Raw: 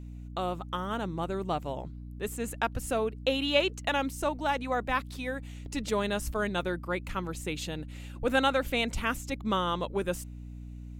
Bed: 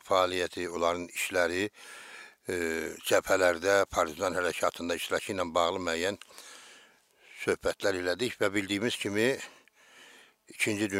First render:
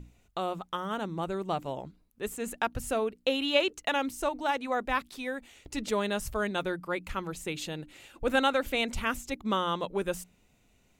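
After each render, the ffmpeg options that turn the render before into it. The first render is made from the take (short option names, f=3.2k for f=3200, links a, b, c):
-af "bandreject=f=60:t=h:w=6,bandreject=f=120:t=h:w=6,bandreject=f=180:t=h:w=6,bandreject=f=240:t=h:w=6,bandreject=f=300:t=h:w=6"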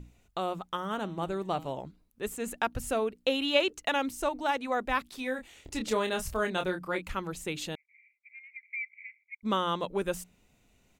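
-filter_complex "[0:a]asettb=1/sr,asplit=3[a][b][c];[a]atrim=end=0.774[d];[b]atrim=start=0.77:end=1.8,asetpts=PTS-STARTPTS,afade=t=in:d=0.004:c=qsin,afade=t=out:st=1.026:d=0.004:c=qsin,bandreject=f=159.8:t=h:w=4,bandreject=f=319.6:t=h:w=4,bandreject=f=479.4:t=h:w=4,bandreject=f=639.2:t=h:w=4,bandreject=f=799:t=h:w=4,bandreject=f=958.8:t=h:w=4,bandreject=f=1.1186k:t=h:w=4,bandreject=f=1.2784k:t=h:w=4,bandreject=f=1.4382k:t=h:w=4,bandreject=f=1.598k:t=h:w=4,bandreject=f=1.7578k:t=h:w=4,bandreject=f=1.9176k:t=h:w=4,bandreject=f=2.0774k:t=h:w=4,bandreject=f=2.2372k:t=h:w=4,bandreject=f=2.397k:t=h:w=4,bandreject=f=2.5568k:t=h:w=4,bandreject=f=2.7166k:t=h:w=4,bandreject=f=2.8764k:t=h:w=4,bandreject=f=3.0362k:t=h:w=4,bandreject=f=3.196k:t=h:w=4,bandreject=f=3.3558k:t=h:w=4,bandreject=f=3.5156k:t=h:w=4,bandreject=f=3.6754k:t=h:w=4,bandreject=f=3.8352k:t=h:w=4,bandreject=f=3.995k:t=h:w=4,bandreject=f=4.1548k:t=h:w=4,bandreject=f=4.3146k:t=h:w=4,bandreject=f=4.4744k:t=h:w=4[e];[c]atrim=start=1.796[f];[d][e]acrossfade=d=0.004:c1=hsin:c2=qsin[g];[g][f]acrossfade=d=0.004:c1=qsin:c2=hsin,asplit=3[h][i][j];[h]afade=t=out:st=5.17:d=0.02[k];[i]asplit=2[l][m];[m]adelay=27,volume=-6.5dB[n];[l][n]amix=inputs=2:normalize=0,afade=t=in:st=5.17:d=0.02,afade=t=out:st=7.02:d=0.02[o];[j]afade=t=in:st=7.02:d=0.02[p];[k][o][p]amix=inputs=3:normalize=0,asettb=1/sr,asplit=3[q][r][s];[q]atrim=end=7.754[t];[r]atrim=start=7.75:end=9.43,asetpts=PTS-STARTPTS,afade=t=in:d=0.004:c=qsin,afade=t=out:st=1.676:d=0.004:c=qsin,asuperpass=centerf=2200:order=8:qfactor=6.1[u];[s]atrim=start=9.426[v];[t][u]acrossfade=d=0.004:c1=hsin:c2=qsin[w];[w][v]acrossfade=d=0.004:c1=qsin:c2=hsin"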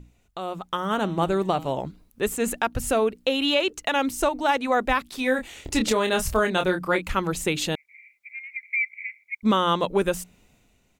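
-af "alimiter=limit=-22.5dB:level=0:latency=1:release=454,dynaudnorm=f=130:g=11:m=11.5dB"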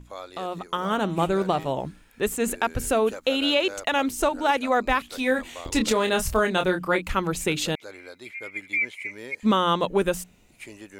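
-filter_complex "[1:a]volume=-13.5dB[a];[0:a][a]amix=inputs=2:normalize=0"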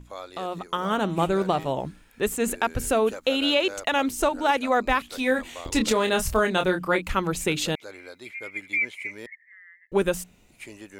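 -filter_complex "[0:a]asettb=1/sr,asplit=3[a][b][c];[a]atrim=end=9.264[d];[b]atrim=start=9.26:end=9.92,asetpts=PTS-STARTPTS,afade=t=in:d=0.004:c=qsin,afade=t=out:st=0.656:d=0.004:c=qsin,asuperpass=centerf=1900:order=8:qfactor=5.1[e];[c]atrim=start=9.916[f];[d][e]acrossfade=d=0.004:c1=hsin:c2=qsin[g];[g][f]acrossfade=d=0.004:c1=qsin:c2=hsin"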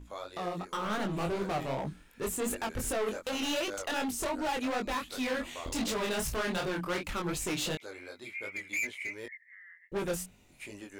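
-af "asoftclip=type=hard:threshold=-27dB,flanger=delay=19.5:depth=4.4:speed=2.7"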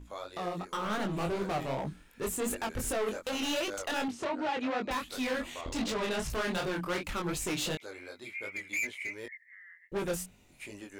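-filter_complex "[0:a]asettb=1/sr,asplit=3[a][b][c];[a]atrim=end=4.084[d];[b]atrim=start=4.08:end=4.91,asetpts=PTS-STARTPTS,afade=t=in:d=0.004:c=qsin,afade=t=out:st=0.826:d=0.004:c=qsin,highpass=120,lowpass=3.8k[e];[c]atrim=start=4.906[f];[d][e]acrossfade=d=0.004:c1=hsin:c2=qsin[g];[g][f]acrossfade=d=0.004:c1=qsin:c2=hsin,asettb=1/sr,asplit=3[h][i][j];[h]atrim=end=5.614[k];[i]atrim=start=5.61:end=6.3,asetpts=PTS-STARTPTS,afade=t=in:d=0.004:c=qsin,afade=t=out:st=0.686:d=0.004:c=qsin,adynamicsmooth=sensitivity=7.5:basefreq=4.9k[l];[j]atrim=start=6.296[m];[k][l]acrossfade=d=0.004:c1=hsin:c2=qsin[n];[n][m]acrossfade=d=0.004:c1=qsin:c2=hsin"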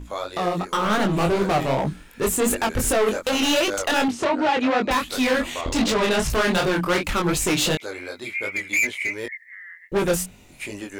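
-af "volume=12dB"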